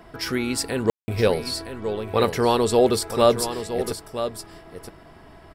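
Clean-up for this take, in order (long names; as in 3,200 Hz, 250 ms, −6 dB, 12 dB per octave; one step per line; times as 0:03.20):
ambience match 0:00.90–0:01.08
echo removal 966 ms −10 dB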